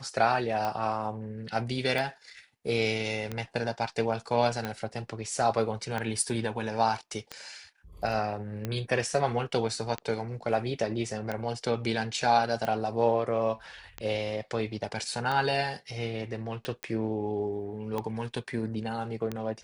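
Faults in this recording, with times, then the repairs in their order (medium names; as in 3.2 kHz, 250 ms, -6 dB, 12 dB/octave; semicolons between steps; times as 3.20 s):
tick 45 rpm -18 dBFS
16.83 s: pop -17 dBFS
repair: de-click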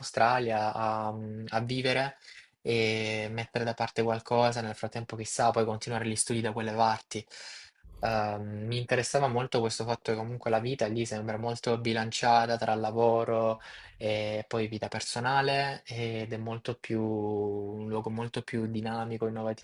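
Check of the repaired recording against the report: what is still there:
nothing left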